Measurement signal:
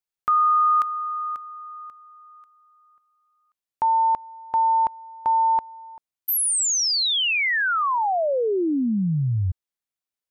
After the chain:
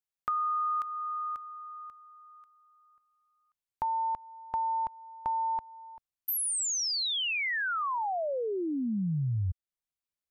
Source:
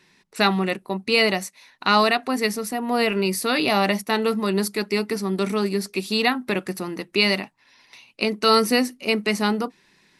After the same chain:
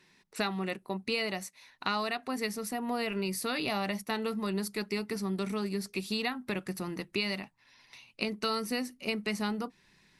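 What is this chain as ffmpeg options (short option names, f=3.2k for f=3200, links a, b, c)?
-af "asubboost=boost=2.5:cutoff=170,acompressor=threshold=-23dB:ratio=6:attack=27:release=393:knee=6:detection=rms,volume=-5.5dB"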